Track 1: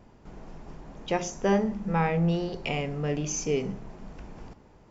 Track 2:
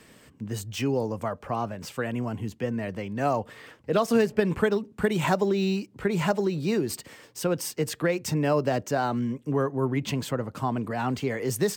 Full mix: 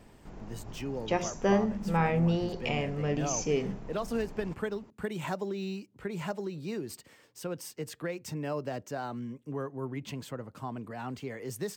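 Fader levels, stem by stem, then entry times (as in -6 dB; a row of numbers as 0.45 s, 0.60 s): -1.5 dB, -10.5 dB; 0.00 s, 0.00 s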